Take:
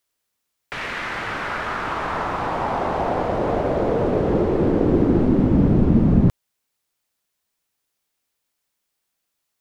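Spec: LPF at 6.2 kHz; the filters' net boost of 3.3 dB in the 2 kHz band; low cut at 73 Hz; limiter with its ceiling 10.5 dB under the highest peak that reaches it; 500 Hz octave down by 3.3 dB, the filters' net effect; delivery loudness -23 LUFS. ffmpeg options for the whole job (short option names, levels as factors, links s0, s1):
-af "highpass=73,lowpass=6200,equalizer=f=500:t=o:g=-4.5,equalizer=f=2000:t=o:g=4.5,volume=1.19,alimiter=limit=0.2:level=0:latency=1"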